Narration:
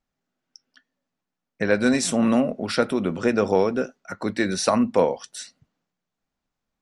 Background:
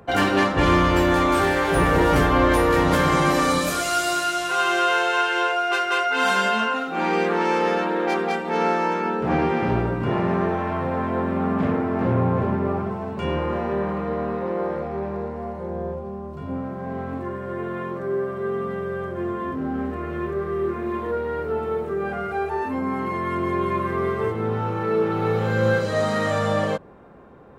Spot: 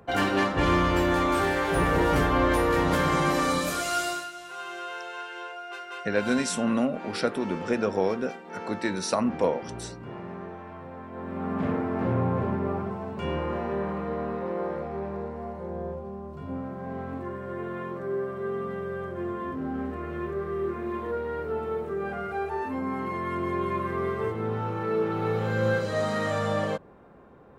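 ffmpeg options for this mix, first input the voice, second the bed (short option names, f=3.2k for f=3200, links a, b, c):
-filter_complex "[0:a]adelay=4450,volume=-5.5dB[a];[1:a]volume=6.5dB,afade=t=out:st=4.02:d=0.28:silence=0.266073,afade=t=in:st=11.11:d=0.59:silence=0.266073[b];[a][b]amix=inputs=2:normalize=0"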